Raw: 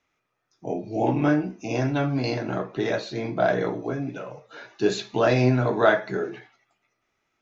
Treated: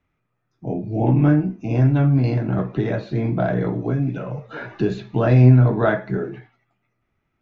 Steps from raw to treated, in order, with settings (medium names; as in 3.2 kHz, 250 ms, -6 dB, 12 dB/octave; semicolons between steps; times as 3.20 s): tone controls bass +15 dB, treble -15 dB; 2.58–5.14 s: three bands compressed up and down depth 70%; trim -1.5 dB